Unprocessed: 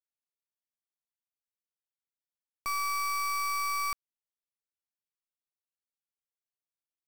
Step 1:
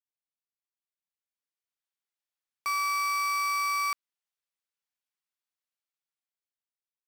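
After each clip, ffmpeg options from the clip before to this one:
ffmpeg -i in.wav -af "highpass=frequency=1200:poles=1,highshelf=frequency=5900:gain=-9,dynaudnorm=framelen=320:gausssize=9:maxgain=11.5dB,volume=-5dB" out.wav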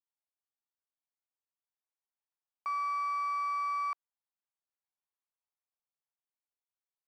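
ffmpeg -i in.wav -af "bandpass=frequency=870:width_type=q:width=1.8:csg=0" out.wav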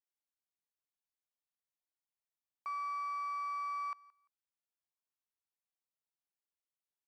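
ffmpeg -i in.wav -af "aecho=1:1:172|344:0.0708|0.0135,volume=-5.5dB" out.wav

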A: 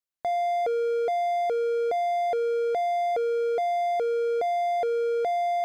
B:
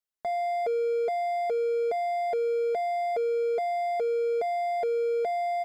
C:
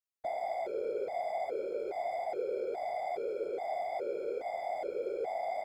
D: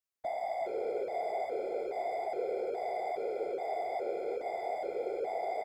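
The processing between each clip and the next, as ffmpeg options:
ffmpeg -i in.wav -af "aecho=1:1:4.7:0.72,volume=-4dB" out.wav
ffmpeg -i in.wav -af "alimiter=level_in=1.5dB:limit=-24dB:level=0:latency=1:release=52,volume=-1.5dB,afftfilt=real='hypot(re,im)*cos(2*PI*random(0))':imag='hypot(re,im)*sin(2*PI*random(1))':win_size=512:overlap=0.75,volume=-1dB" out.wav
ffmpeg -i in.wav -af "aecho=1:1:368:0.355" out.wav

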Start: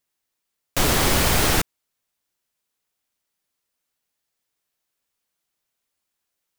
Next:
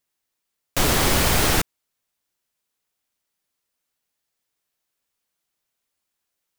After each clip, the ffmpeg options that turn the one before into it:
ffmpeg -i in.wav -af anull out.wav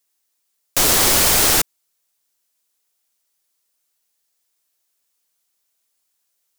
ffmpeg -i in.wav -af "bass=frequency=250:gain=-7,treble=frequency=4000:gain=8,volume=1.5dB" out.wav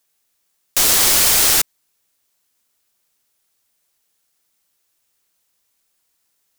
ffmpeg -i in.wav -af "tiltshelf=frequency=1300:gain=-4,acrusher=bits=10:mix=0:aa=0.000001,volume=-2dB" out.wav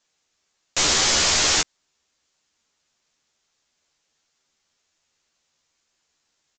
ffmpeg -i in.wav -filter_complex "[0:a]aresample=16000,asoftclip=type=tanh:threshold=-15dB,aresample=44100,asplit=2[link_01][link_02];[link_02]adelay=13,volume=-4dB[link_03];[link_01][link_03]amix=inputs=2:normalize=0" out.wav

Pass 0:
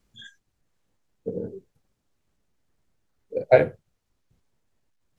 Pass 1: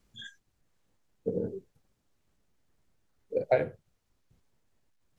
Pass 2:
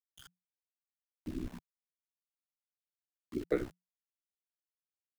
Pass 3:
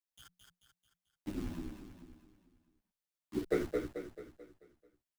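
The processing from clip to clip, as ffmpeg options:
ffmpeg -i in.wav -af "acompressor=threshold=-24dB:ratio=3" out.wav
ffmpeg -i in.wav -af "aeval=exprs='val(0)*gte(abs(val(0)),0.00944)':channel_layout=same,aeval=exprs='val(0)*sin(2*PI*32*n/s)':channel_layout=same,afreqshift=-180,volume=-4dB" out.wav
ffmpeg -i in.wav -filter_complex "[0:a]asplit=2[link_01][link_02];[link_02]acrusher=bits=5:mix=0:aa=0.000001,volume=-11dB[link_03];[link_01][link_03]amix=inputs=2:normalize=0,aecho=1:1:219|438|657|876|1095|1314:0.562|0.264|0.124|0.0584|0.0274|0.0129,asplit=2[link_04][link_05];[link_05]adelay=9.3,afreqshift=-1.9[link_06];[link_04][link_06]amix=inputs=2:normalize=1,volume=1.5dB" out.wav

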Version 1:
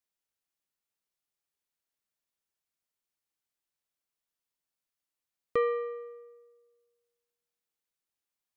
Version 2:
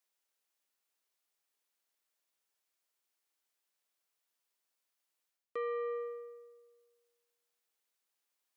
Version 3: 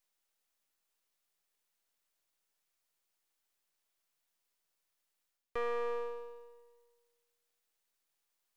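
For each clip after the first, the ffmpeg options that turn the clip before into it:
ffmpeg -i in.wav -af "highpass=360,areverse,acompressor=threshold=-39dB:ratio=8,areverse,volume=4.5dB" out.wav
ffmpeg -i in.wav -af "aeval=exprs='if(lt(val(0),0),0.251*val(0),val(0))':channel_layout=same,volume=4.5dB" out.wav

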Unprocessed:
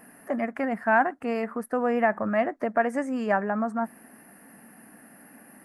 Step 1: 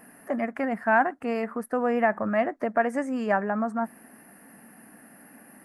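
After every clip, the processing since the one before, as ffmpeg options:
ffmpeg -i in.wav -af anull out.wav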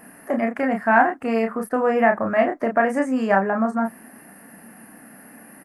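ffmpeg -i in.wav -filter_complex "[0:a]asplit=2[link_01][link_02];[link_02]adelay=31,volume=-4.5dB[link_03];[link_01][link_03]amix=inputs=2:normalize=0,volume=4.5dB" out.wav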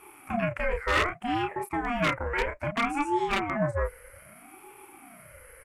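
ffmpeg -i in.wav -af "aeval=exprs='0.282*(abs(mod(val(0)/0.282+3,4)-2)-1)':channel_layout=same,equalizer=frequency=250:width_type=o:width=1:gain=7,equalizer=frequency=500:width_type=o:width=1:gain=-10,equalizer=frequency=2000:width_type=o:width=1:gain=8,equalizer=frequency=8000:width_type=o:width=1:gain=6,aeval=exprs='val(0)*sin(2*PI*440*n/s+440*0.4/0.63*sin(2*PI*0.63*n/s))':channel_layout=same,volume=-6dB" out.wav

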